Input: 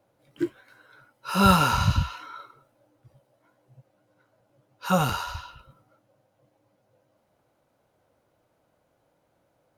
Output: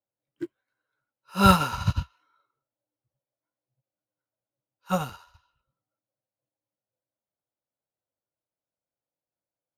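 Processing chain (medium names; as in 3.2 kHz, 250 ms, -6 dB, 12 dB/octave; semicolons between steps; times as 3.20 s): in parallel at -5.5 dB: saturation -15.5 dBFS, distortion -13 dB; on the sum: upward expansion 2.5:1, over -33 dBFS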